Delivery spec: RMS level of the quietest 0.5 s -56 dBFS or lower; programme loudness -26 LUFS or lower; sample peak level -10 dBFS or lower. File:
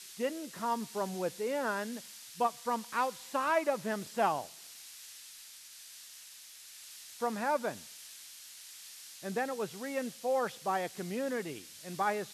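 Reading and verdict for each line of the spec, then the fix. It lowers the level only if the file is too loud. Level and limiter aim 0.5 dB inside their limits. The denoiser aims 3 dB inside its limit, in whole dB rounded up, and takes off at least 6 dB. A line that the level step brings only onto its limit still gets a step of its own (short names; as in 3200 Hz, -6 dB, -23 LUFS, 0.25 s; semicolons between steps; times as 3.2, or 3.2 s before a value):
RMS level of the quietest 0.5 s -52 dBFS: fail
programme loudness -34.5 LUFS: OK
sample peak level -16.5 dBFS: OK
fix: denoiser 7 dB, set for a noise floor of -52 dBFS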